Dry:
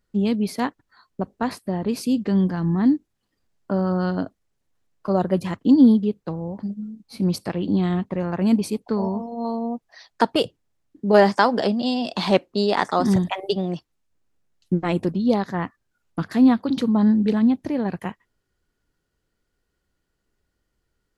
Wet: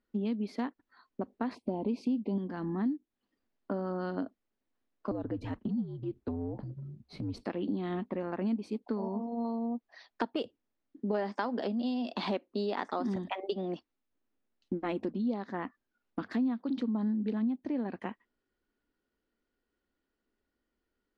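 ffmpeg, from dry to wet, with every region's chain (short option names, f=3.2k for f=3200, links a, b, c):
-filter_complex "[0:a]asettb=1/sr,asplit=3[a][b][c];[a]atrim=end=1.554[d];[b]atrim=start=1.55:end=2.38,asetpts=PTS-STARTPTS,afade=t=in:d=0.004:c=qsin,afade=t=out:st=0.826:d=0.004:c=qsin,asuperstop=centerf=1500:order=12:qfactor=1.3,highshelf=f=4.1k:g=-8,acontrast=37[e];[c]atrim=start=2.376[f];[d][e]acrossfade=d=0.004:c1=hsin:c2=qsin[g];[g][f]acrossfade=d=0.004:c1=qsin:c2=hsin,asettb=1/sr,asplit=3[h][i][j];[h]atrim=end=5.114[k];[i]atrim=start=5.11:end=7.44,asetpts=PTS-STARTPTS,afade=t=in:d=0.004:c=qsin,afade=t=out:st=2.326:d=0.004:c=qsin,lowshelf=f=460:g=11,acompressor=threshold=-21dB:ratio=5:attack=3.2:release=140:knee=1:detection=peak,afreqshift=-73[l];[j]atrim=start=7.436[m];[k][l]acrossfade=d=0.004:c1=hsin:c2=qsin[n];[n][m]acrossfade=d=0.004:c1=qsin:c2=hsin,lowpass=3.9k,lowshelf=f=190:t=q:w=3:g=-6.5,acompressor=threshold=-24dB:ratio=4,volume=-6.5dB"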